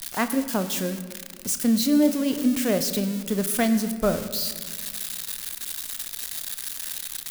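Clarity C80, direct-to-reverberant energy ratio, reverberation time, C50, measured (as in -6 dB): 12.0 dB, 8.5 dB, 1.7 s, 11.0 dB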